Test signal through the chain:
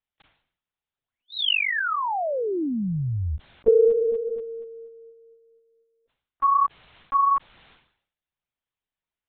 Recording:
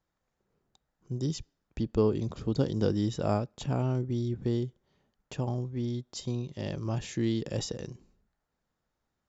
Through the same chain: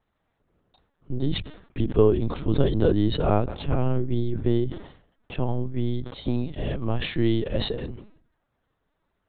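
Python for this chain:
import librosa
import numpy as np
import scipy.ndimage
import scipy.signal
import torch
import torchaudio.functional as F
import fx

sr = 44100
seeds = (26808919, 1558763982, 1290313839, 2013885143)

y = fx.lpc_vocoder(x, sr, seeds[0], excitation='pitch_kept', order=10)
y = fx.sustainer(y, sr, db_per_s=94.0)
y = y * librosa.db_to_amplitude(7.0)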